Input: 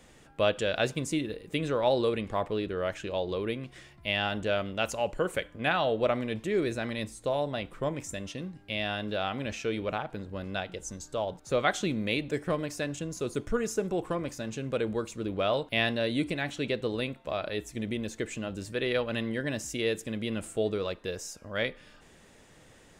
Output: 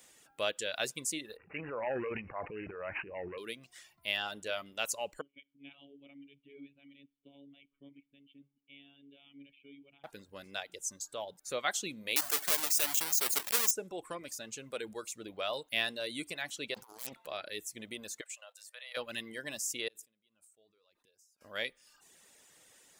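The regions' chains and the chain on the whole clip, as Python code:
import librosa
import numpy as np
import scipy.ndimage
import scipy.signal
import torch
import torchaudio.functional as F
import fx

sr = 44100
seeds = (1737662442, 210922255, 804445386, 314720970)

y = fx.chain(x, sr, fx.peak_eq(hz=79.0, db=8.0, octaves=1.7),
    fx.transient(attack_db=-5, sustain_db=11),
    fx.resample_bad(factor=8, down='none', up='filtered'), at=(1.37, 3.38))
y = fx.chain(y, sr, fx.robotise(hz=140.0),
    fx.formant_cascade(vowel='i'), at=(5.21, 10.04))
y = fx.chain(y, sr, fx.halfwave_hold(),
    fx.highpass(hz=920.0, slope=6),
    fx.env_flatten(amount_pct=50), at=(12.16, 13.71))
y = fx.chain(y, sr, fx.self_delay(depth_ms=0.82),
    fx.peak_eq(hz=1000.0, db=3.5, octaves=1.2),
    fx.over_compress(threshold_db=-38.0, ratio=-0.5), at=(16.74, 17.27))
y = fx.chain(y, sr, fx.ellip_highpass(hz=560.0, order=4, stop_db=40),
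    fx.level_steps(step_db=11), at=(18.21, 18.97))
y = fx.chain(y, sr, fx.peak_eq(hz=1800.0, db=-4.5, octaves=0.39),
    fx.gate_flip(shuts_db=-35.0, range_db=-31),
    fx.sustainer(db_per_s=53.0), at=(19.88, 21.41))
y = fx.dereverb_blind(y, sr, rt60_s=0.68)
y = fx.riaa(y, sr, side='recording')
y = y * 10.0 ** (-7.0 / 20.0)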